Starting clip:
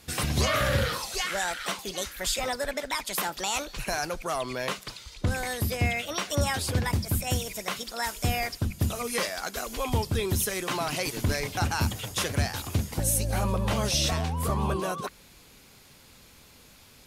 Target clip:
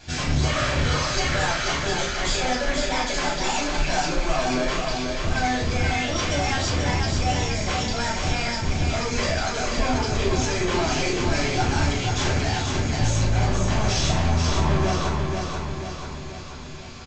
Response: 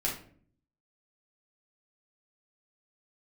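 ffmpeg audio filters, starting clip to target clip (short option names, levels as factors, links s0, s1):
-filter_complex "[0:a]aresample=16000,asoftclip=type=tanh:threshold=0.0237,aresample=44100,aecho=1:1:486|972|1458|1944|2430|2916|3402:0.596|0.328|0.18|0.0991|0.0545|0.03|0.0165[s0];[1:a]atrim=start_sample=2205[s1];[s0][s1]afir=irnorm=-1:irlink=0,volume=1.68"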